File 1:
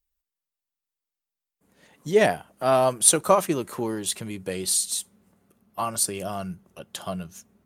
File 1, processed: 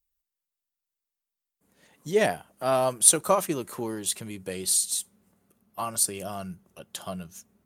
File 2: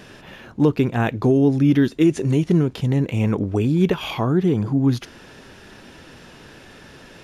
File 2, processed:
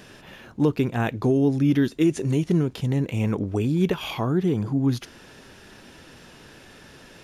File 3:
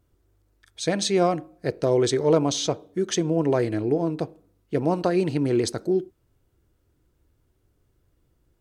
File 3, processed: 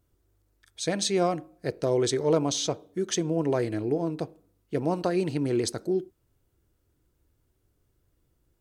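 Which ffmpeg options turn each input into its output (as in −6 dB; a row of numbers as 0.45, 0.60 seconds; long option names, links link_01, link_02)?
-af "highshelf=frequency=5800:gain=5.5,volume=-4dB"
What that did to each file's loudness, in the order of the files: −1.5, −4.0, −3.5 LU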